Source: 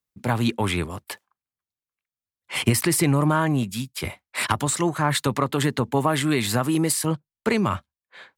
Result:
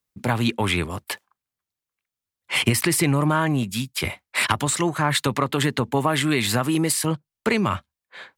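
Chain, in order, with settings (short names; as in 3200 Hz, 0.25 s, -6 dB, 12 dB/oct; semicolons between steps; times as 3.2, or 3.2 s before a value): in parallel at +2.5 dB: compressor, threshold -29 dBFS, peak gain reduction 14.5 dB; on the sum: dynamic EQ 2600 Hz, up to +4 dB, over -33 dBFS, Q 0.94; gain -3 dB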